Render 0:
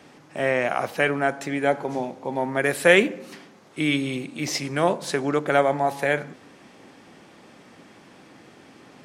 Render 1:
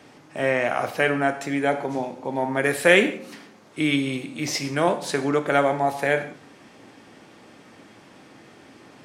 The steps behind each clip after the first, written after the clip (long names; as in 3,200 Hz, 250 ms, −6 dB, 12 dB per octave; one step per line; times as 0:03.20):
reverb whose tail is shaped and stops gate 200 ms falling, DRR 8 dB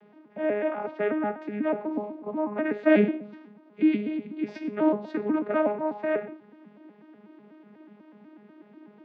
vocoder with an arpeggio as carrier bare fifth, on G#3, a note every 123 ms
high-frequency loss of the air 330 metres
level −2 dB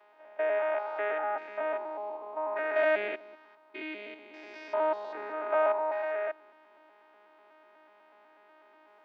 spectrum averaged block by block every 200 ms
four-pole ladder high-pass 580 Hz, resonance 25%
level +9 dB